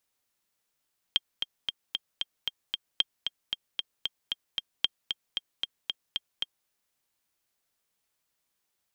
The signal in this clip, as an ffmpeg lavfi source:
-f lavfi -i "aevalsrc='pow(10,(-9.5-6.5*gte(mod(t,7*60/228),60/228))/20)*sin(2*PI*3200*mod(t,60/228))*exp(-6.91*mod(t,60/228)/0.03)':d=5.52:s=44100"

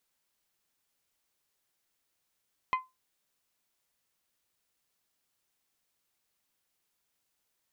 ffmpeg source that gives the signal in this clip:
-f lavfi -i "aevalsrc='0.0841*pow(10,-3*t/0.21)*sin(2*PI*1030*t)+0.0376*pow(10,-3*t/0.129)*sin(2*PI*2060*t)+0.0168*pow(10,-3*t/0.114)*sin(2*PI*2472*t)+0.0075*pow(10,-3*t/0.097)*sin(2*PI*3090*t)+0.00335*pow(10,-3*t/0.08)*sin(2*PI*4120*t)':d=0.89:s=44100"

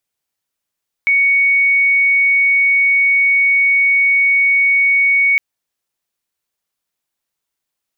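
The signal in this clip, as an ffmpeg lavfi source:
-f lavfi -i "sine=f=2230:d=4.31:r=44100,volume=8.56dB"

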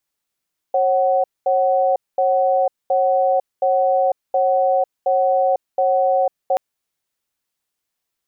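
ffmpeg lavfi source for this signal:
-f lavfi -i "aevalsrc='0.15*(sin(2*PI*543*t)+sin(2*PI*748*t))*clip(min(mod(t,0.72),0.5-mod(t,0.72))/0.005,0,1)':d=5.83:s=44100"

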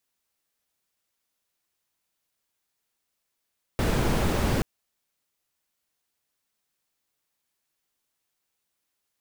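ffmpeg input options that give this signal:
-f lavfi -i "anoisesrc=c=brown:a=0.313:d=0.83:r=44100:seed=1"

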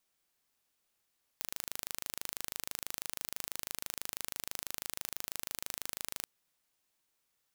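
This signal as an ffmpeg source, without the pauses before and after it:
-f lavfi -i "aevalsrc='0.316*eq(mod(n,1690),0)':d=4.84:s=44100"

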